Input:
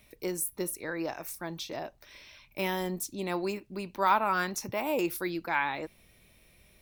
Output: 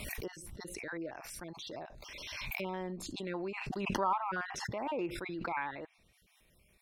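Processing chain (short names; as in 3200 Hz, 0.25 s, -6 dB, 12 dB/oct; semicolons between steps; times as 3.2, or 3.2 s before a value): random spectral dropouts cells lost 29%; treble ducked by the level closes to 2300 Hz, closed at -30 dBFS; backwards sustainer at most 23 dB/s; gain -7 dB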